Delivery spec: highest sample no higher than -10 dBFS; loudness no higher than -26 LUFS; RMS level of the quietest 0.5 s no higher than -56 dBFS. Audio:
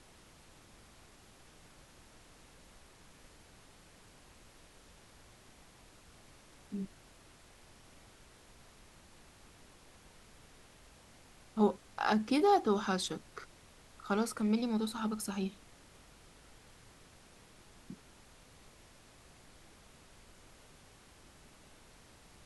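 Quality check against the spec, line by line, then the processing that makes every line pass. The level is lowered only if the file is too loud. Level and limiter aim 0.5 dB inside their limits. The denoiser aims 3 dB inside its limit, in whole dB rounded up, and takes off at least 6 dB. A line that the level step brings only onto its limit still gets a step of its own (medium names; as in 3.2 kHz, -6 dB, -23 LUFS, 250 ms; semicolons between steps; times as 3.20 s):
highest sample -16.5 dBFS: pass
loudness -33.5 LUFS: pass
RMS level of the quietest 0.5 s -59 dBFS: pass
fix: none needed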